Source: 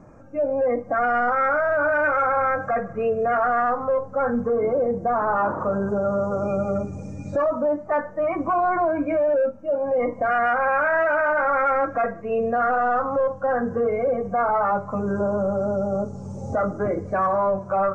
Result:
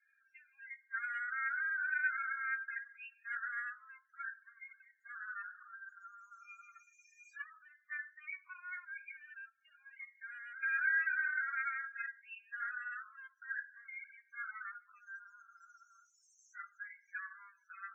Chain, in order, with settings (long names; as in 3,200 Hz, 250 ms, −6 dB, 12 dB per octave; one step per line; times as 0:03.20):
Chebyshev high-pass filter 1,600 Hz, order 5
0:08.99–0:10.63: downward compressor 12 to 1, threshold −41 dBFS, peak gain reduction 13 dB
spectral peaks only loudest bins 16
level −5 dB